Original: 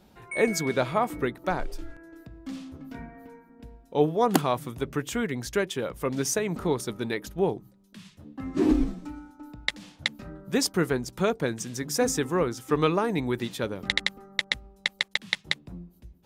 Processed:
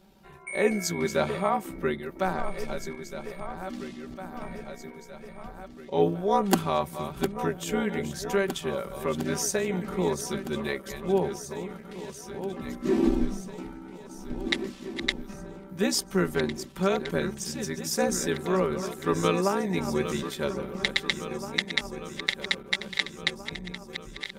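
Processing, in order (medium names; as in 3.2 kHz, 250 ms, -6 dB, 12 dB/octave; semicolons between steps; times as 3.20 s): backward echo that repeats 656 ms, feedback 67%, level -10 dB; granular stretch 1.5×, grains 31 ms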